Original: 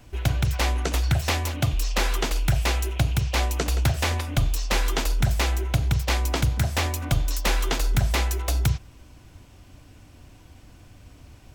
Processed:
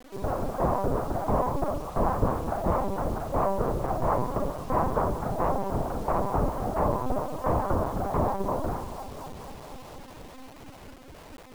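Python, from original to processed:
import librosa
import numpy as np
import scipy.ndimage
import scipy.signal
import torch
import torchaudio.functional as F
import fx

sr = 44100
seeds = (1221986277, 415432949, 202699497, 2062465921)

p1 = scipy.signal.sosfilt(scipy.signal.ellip(3, 1.0, 80, [240.0, 1100.0], 'bandpass', fs=sr, output='sos'), x)
p2 = p1 + fx.echo_heads(p1, sr, ms=242, heads='all three', feedback_pct=65, wet_db=-22.0, dry=0)
p3 = fx.rev_schroeder(p2, sr, rt60_s=0.75, comb_ms=29, drr_db=-2.5)
p4 = fx.rider(p3, sr, range_db=4, speed_s=0.5)
p5 = p3 + F.gain(torch.from_numpy(p4), -0.5).numpy()
p6 = fx.lpc_vocoder(p5, sr, seeds[0], excitation='pitch_kept', order=8)
p7 = fx.harmonic_tremolo(p6, sr, hz=4.5, depth_pct=50, crossover_hz=530.0)
y = fx.quant_dither(p7, sr, seeds[1], bits=8, dither='none')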